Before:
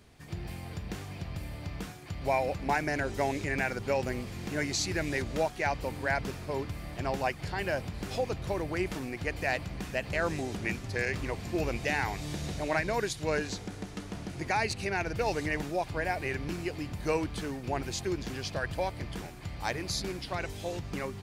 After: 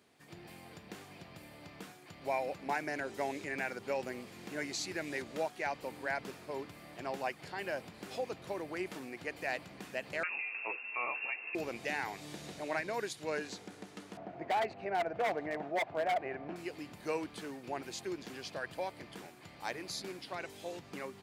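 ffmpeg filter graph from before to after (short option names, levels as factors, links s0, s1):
-filter_complex "[0:a]asettb=1/sr,asplit=3[s0][s1][s2];[s0]atrim=end=10.234[s3];[s1]atrim=start=10.23:end=11.55,asetpts=PTS-STARTPTS,afade=t=in:d=0.004:c=qsin,afade=t=out:st=1.316:d=0.004:c=qsin,lowpass=f=2400:t=q:w=0.5098,lowpass=f=2400:t=q:w=0.6013,lowpass=f=2400:t=q:w=0.9,lowpass=f=2400:t=q:w=2.563,afreqshift=-2800,asplit=2[s4][s5];[s5]adelay=12,volume=0.447[s6];[s4][s6]amix=inputs=2:normalize=0,atrim=end_sample=58212[s7];[s2]atrim=start=11.546[s8];[s3][s7]acrossfade=d=0.004:c1=hsin:c2=qsin[s9];[s9][s8]acrossfade=d=0.004:c1=qsin:c2=hsin,asettb=1/sr,asplit=3[s10][s11][s12];[s10]atrim=end=14.174[s13];[s11]atrim=start=14.17:end=16.56,asetpts=PTS-STARTPTS,afade=t=in:d=0.004:c=qsin,afade=t=out:st=2.386:d=0.004:c=qsin,lowpass=1800,equalizer=f=680:t=o:w=0.42:g=14.5,aeval=exprs='0.1*(abs(mod(val(0)/0.1+3,4)-2)-1)':c=same[s14];[s12]atrim=start=16.556[s15];[s13][s14]acrossfade=d=0.004:c1=hsin:c2=qsin[s16];[s16][s15]acrossfade=d=0.004:c1=qsin:c2=hsin,highpass=230,equalizer=f=5800:w=2.7:g=-2.5,volume=0.501"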